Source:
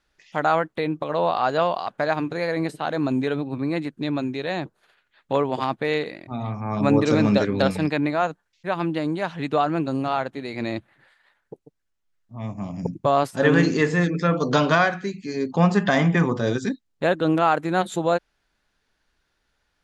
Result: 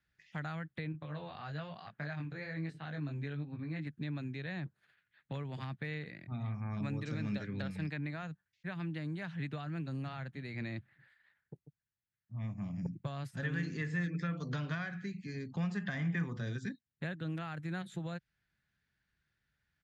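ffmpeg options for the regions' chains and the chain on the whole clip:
-filter_complex "[0:a]asettb=1/sr,asplit=3[s0][s1][s2];[s0]atrim=end=0.924[s3];[s1]atrim=start=0.92:end=3.87,asetpts=PTS-STARTPTS,afade=t=in:d=0.004:c=qsin,afade=t=out:st=2.946:d=0.004:c=qsin,lowpass=6500,flanger=delay=18.5:depth=2.9:speed=1.1[s4];[s2]atrim=start=3.866[s5];[s3][s4]acrossfade=d=0.004:c1=hsin:c2=qsin[s6];[s6][s5]acrossfade=d=0.004:c1=qsin:c2=hsin,highpass=95,acrossover=split=210|2800[s7][s8][s9];[s7]acompressor=threshold=0.0112:ratio=4[s10];[s8]acompressor=threshold=0.0398:ratio=4[s11];[s9]acompressor=threshold=0.00891:ratio=4[s12];[s10][s11][s12]amix=inputs=3:normalize=0,firequalizer=gain_entry='entry(140,0);entry(260,-14);entry(450,-19);entry(1000,-19);entry(1700,-7);entry(2800,-13);entry(6100,-17)':delay=0.05:min_phase=1,volume=1.12"

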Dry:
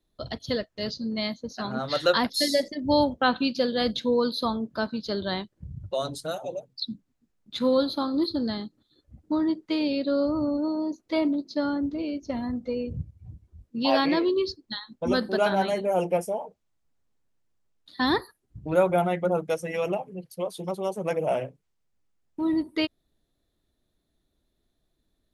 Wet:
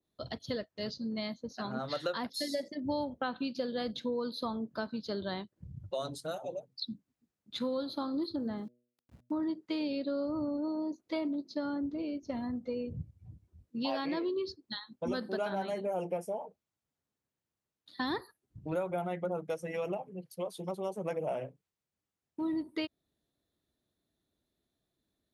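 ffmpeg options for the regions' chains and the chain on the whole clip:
-filter_complex "[0:a]asettb=1/sr,asplit=3[s0][s1][s2];[s0]atrim=end=8.364[s3];[s1]atrim=start=8.36:end=9.43,asetpts=PTS-STARTPTS,afade=t=in:d=0.004:c=qsin,afade=t=out:st=1.066:d=0.004:c=qsin,lowpass=1900,aeval=exprs='val(0)*gte(abs(val(0)),0.00211)':c=same,bandreject=f=121.4:t=h:w=4,bandreject=f=242.8:t=h:w=4,bandreject=f=364.2:t=h:w=4,bandreject=f=485.6:t=h:w=4,bandreject=f=607:t=h:w=4[s4];[s2]atrim=start=9.426[s5];[s3][s4]acrossfade=d=0.004:c1=hsin:c2=qsin[s6];[s6][s5]acrossfade=d=0.004:c1=qsin:c2=hsin,highpass=81,acompressor=threshold=0.0562:ratio=5,adynamicequalizer=threshold=0.00447:dfrequency=1800:dqfactor=0.7:tfrequency=1800:tqfactor=0.7:attack=5:release=100:ratio=0.375:range=2:mode=cutabove:tftype=highshelf,volume=0.531"

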